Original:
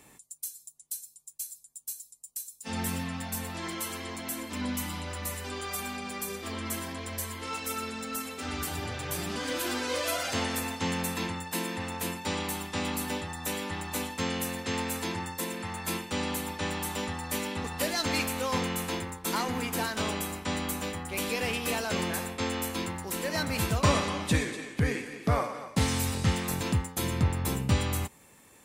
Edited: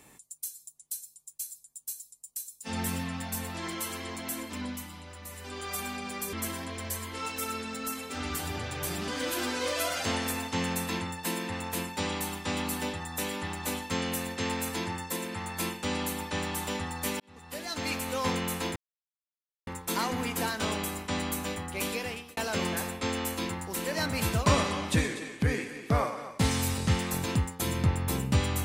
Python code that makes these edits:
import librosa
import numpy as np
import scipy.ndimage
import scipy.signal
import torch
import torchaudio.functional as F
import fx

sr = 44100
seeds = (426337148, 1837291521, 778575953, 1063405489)

y = fx.edit(x, sr, fx.fade_down_up(start_s=4.4, length_s=1.36, db=-9.0, fade_s=0.48),
    fx.cut(start_s=6.33, length_s=0.28),
    fx.fade_in_span(start_s=17.48, length_s=1.05),
    fx.insert_silence(at_s=19.04, length_s=0.91),
    fx.fade_out_span(start_s=21.21, length_s=0.53), tone=tone)